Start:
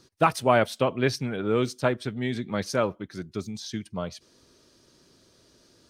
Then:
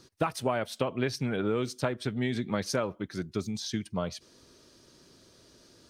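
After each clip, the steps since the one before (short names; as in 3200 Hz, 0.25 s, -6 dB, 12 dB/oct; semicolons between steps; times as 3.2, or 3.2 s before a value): compressor 12:1, threshold -26 dBFS, peak gain reduction 12.5 dB; gain +1.5 dB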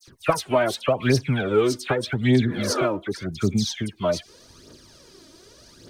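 dispersion lows, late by 76 ms, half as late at 2100 Hz; spectral repair 2.5–2.82, 240–2000 Hz both; phaser 0.85 Hz, delay 3.4 ms, feedback 60%; gain +6.5 dB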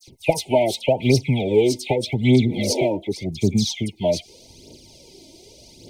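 brick-wall FIR band-stop 950–2000 Hz; gain +3 dB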